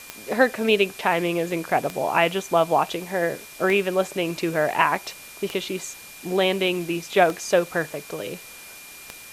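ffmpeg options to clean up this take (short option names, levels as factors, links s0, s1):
-af "adeclick=t=4,bandreject=f=2400:w=30,afftdn=nr=25:nf=-42"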